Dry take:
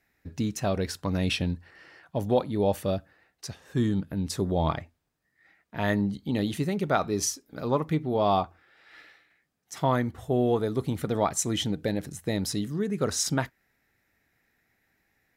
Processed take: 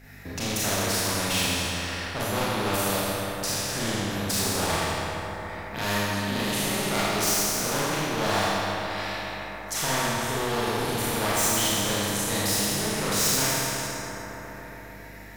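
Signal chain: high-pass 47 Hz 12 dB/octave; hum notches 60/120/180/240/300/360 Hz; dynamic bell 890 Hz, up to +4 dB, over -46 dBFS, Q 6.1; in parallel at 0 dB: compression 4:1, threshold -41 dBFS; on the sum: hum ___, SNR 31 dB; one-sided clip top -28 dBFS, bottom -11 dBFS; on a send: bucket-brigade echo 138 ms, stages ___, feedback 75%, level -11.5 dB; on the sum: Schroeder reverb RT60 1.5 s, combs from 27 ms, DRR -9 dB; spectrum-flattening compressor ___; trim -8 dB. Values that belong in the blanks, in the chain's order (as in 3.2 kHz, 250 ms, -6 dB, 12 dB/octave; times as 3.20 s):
50 Hz, 2048, 2:1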